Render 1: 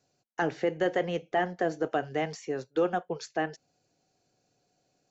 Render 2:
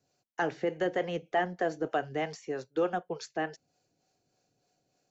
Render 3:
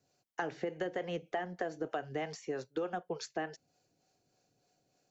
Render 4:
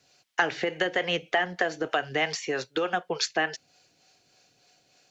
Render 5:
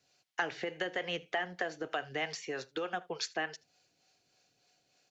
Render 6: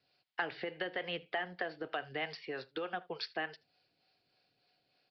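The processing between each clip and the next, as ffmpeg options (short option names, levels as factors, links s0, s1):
-filter_complex "[0:a]acrossover=split=410[s0][s1];[s0]aeval=exprs='val(0)*(1-0.5/2+0.5/2*cos(2*PI*3.3*n/s))':c=same[s2];[s1]aeval=exprs='val(0)*(1-0.5/2-0.5/2*cos(2*PI*3.3*n/s))':c=same[s3];[s2][s3]amix=inputs=2:normalize=0"
-af "acompressor=threshold=0.0251:ratio=10"
-af "equalizer=f=3000:t=o:w=2.9:g=14.5,volume=1.78"
-af "aecho=1:1:78:0.0708,volume=0.355"
-af "aresample=11025,aresample=44100,volume=0.75"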